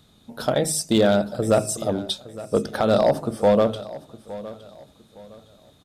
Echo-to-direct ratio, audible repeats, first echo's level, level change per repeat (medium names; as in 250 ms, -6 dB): -16.5 dB, 2, -17.0 dB, -10.0 dB